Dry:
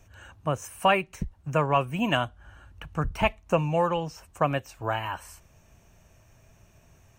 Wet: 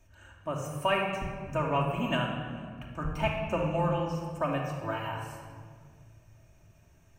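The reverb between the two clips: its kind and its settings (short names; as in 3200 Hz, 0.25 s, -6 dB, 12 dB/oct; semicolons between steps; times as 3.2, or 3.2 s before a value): shoebox room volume 2800 m³, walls mixed, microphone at 2.7 m; gain -8.5 dB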